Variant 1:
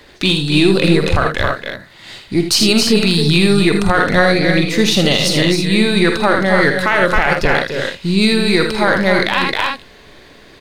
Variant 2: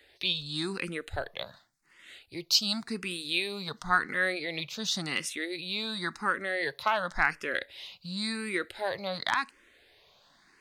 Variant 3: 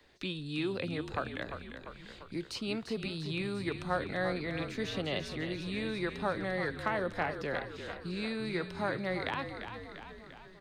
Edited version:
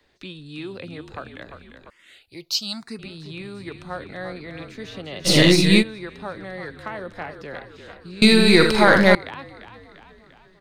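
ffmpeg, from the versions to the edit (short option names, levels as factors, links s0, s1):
-filter_complex "[0:a]asplit=2[s0][s1];[2:a]asplit=4[s2][s3][s4][s5];[s2]atrim=end=1.902[s6];[1:a]atrim=start=1.898:end=2.992[s7];[s3]atrim=start=2.988:end=5.3[s8];[s0]atrim=start=5.24:end=5.84[s9];[s4]atrim=start=5.78:end=8.222[s10];[s1]atrim=start=8.218:end=9.152[s11];[s5]atrim=start=9.148[s12];[s6][s7]acrossfade=d=0.004:c1=hsin:c2=hsin[s13];[s13][s8]acrossfade=d=0.004:c1=hsin:c2=hsin[s14];[s14][s9]acrossfade=d=0.06:c1=tri:c2=tri[s15];[s15][s10]acrossfade=d=0.06:c1=tri:c2=tri[s16];[s16][s11]acrossfade=d=0.004:c1=hsin:c2=hsin[s17];[s17][s12]acrossfade=d=0.004:c1=hsin:c2=hsin"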